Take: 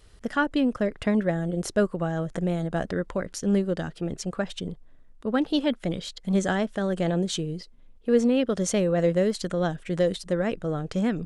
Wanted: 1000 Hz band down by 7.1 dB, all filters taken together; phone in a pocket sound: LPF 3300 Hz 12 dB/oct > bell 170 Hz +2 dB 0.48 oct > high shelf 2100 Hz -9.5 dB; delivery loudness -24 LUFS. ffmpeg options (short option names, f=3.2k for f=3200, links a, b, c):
-af "lowpass=3.3k,equalizer=f=170:t=o:w=0.48:g=2,equalizer=f=1k:t=o:g=-8.5,highshelf=f=2.1k:g=-9.5,volume=3.5dB"